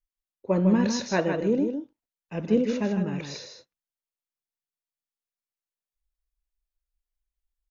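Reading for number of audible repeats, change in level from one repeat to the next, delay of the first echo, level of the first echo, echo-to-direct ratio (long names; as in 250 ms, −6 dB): 1, repeats not evenly spaced, 155 ms, −6.5 dB, −6.5 dB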